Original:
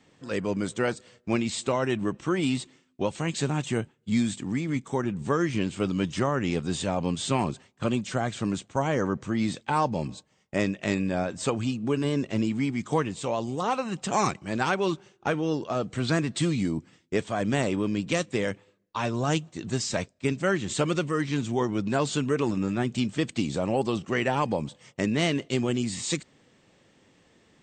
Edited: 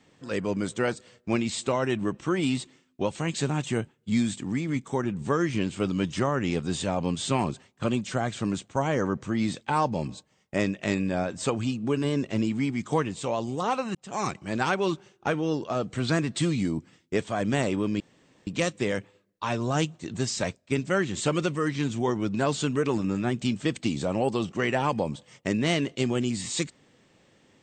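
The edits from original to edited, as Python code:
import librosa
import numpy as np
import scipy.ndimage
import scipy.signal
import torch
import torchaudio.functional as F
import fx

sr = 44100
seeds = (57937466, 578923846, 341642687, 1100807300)

y = fx.edit(x, sr, fx.fade_in_span(start_s=13.95, length_s=0.47),
    fx.insert_room_tone(at_s=18.0, length_s=0.47), tone=tone)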